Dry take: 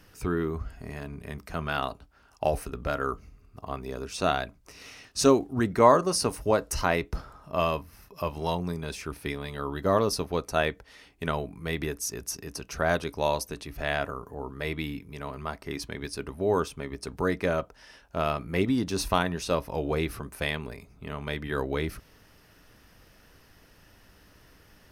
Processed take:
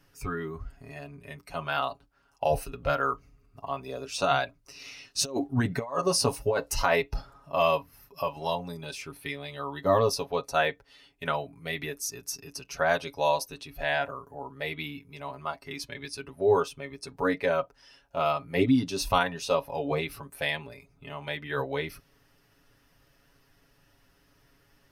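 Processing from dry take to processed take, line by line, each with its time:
2.5–8.23 negative-ratio compressor -24 dBFS, ratio -0.5
whole clip: spectral noise reduction 9 dB; comb 7.2 ms, depth 72%; dynamic EQ 9200 Hz, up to -4 dB, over -50 dBFS, Q 0.79

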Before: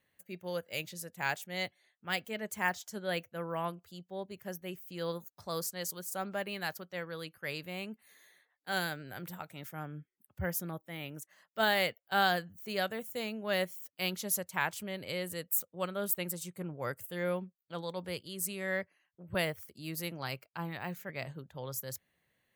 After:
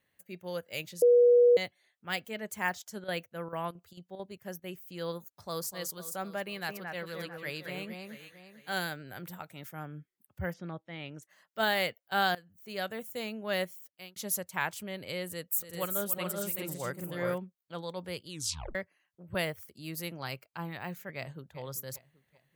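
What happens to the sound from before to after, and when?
1.02–1.57 bleep 484 Hz -17 dBFS
2.64–4.72 chopper 4.5 Hz, depth 65%, duty 80%
5.22–5.65 echo throw 0.25 s, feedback 65%, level -11 dB
6.46–8.82 echo with dull and thin repeats by turns 0.223 s, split 2200 Hz, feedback 57%, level -3.5 dB
10.52–11.22 LPF 3700 Hz -> 7000 Hz 24 dB/oct
12.35–12.99 fade in, from -19 dB
13.61–14.16 fade out
15.31–17.38 tapped delay 0.288/0.381/0.421 s -12/-6/-5.5 dB
18.29 tape stop 0.46 s
21.15–21.59 echo throw 0.39 s, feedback 40%, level -14.5 dB

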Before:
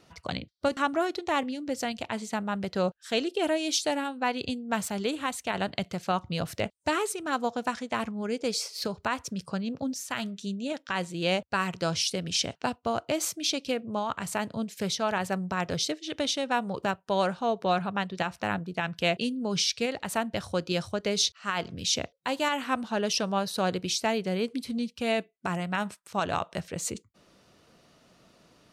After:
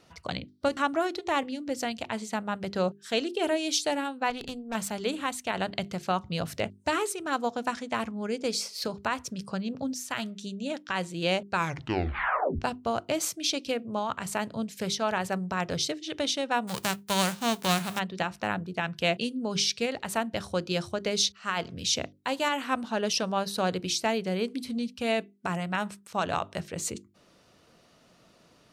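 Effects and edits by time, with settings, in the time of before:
4.3–4.75 tube stage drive 28 dB, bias 0.7
11.5 tape stop 1.09 s
16.67–17.98 spectral whitening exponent 0.3
whole clip: notches 50/100/150/200/250/300/350/400 Hz

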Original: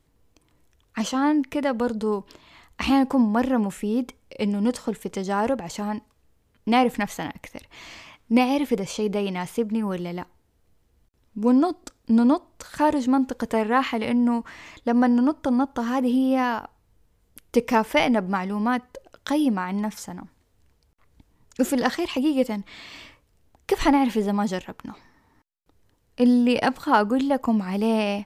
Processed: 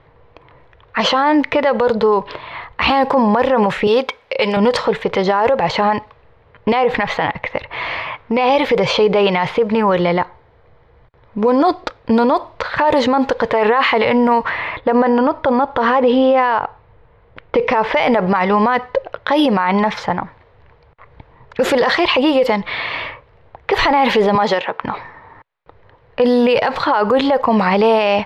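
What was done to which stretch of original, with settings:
3.87–4.57 RIAA curve recording
6.72–8.5 compressor 5:1, threshold -24 dBFS
9.93–11.69 notch 2700 Hz
14.49–17.94 air absorption 130 m
24.35–24.83 HPF 260 Hz
whole clip: low-pass opened by the level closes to 2200 Hz, open at -15.5 dBFS; graphic EQ 125/250/500/1000/2000/4000/8000 Hz +9/-8/+12/+10/+9/+10/-10 dB; maximiser +15.5 dB; gain -5 dB

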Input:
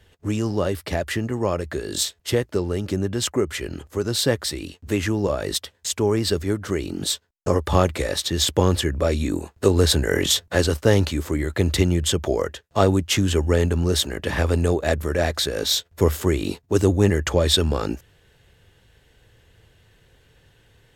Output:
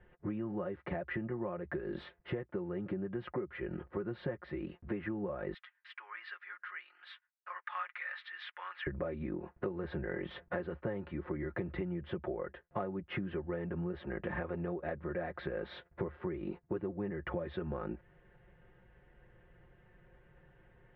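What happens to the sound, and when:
5.54–8.87 HPF 1400 Hz 24 dB/oct
whole clip: inverse Chebyshev low-pass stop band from 6400 Hz, stop band 60 dB; comb 5.6 ms, depth 79%; compressor 12:1, threshold -28 dBFS; gain -6 dB

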